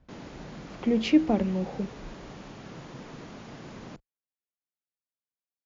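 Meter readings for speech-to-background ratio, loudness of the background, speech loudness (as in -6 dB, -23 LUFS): 17.5 dB, -44.0 LUFS, -26.5 LUFS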